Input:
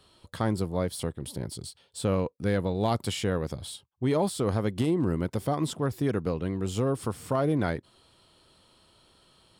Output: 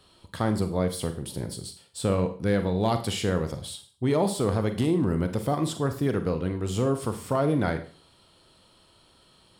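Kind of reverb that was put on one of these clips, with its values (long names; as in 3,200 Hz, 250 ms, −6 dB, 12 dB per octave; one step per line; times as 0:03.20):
four-comb reverb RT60 0.43 s, combs from 33 ms, DRR 8 dB
level +1.5 dB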